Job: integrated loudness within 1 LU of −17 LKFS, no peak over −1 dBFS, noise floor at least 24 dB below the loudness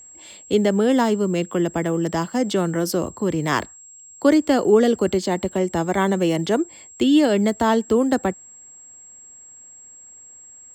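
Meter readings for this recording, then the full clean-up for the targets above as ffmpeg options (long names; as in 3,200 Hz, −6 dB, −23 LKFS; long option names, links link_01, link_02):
interfering tone 7,600 Hz; level of the tone −42 dBFS; integrated loudness −20.5 LKFS; sample peak −5.0 dBFS; target loudness −17.0 LKFS
→ -af "bandreject=frequency=7600:width=30"
-af "volume=3.5dB"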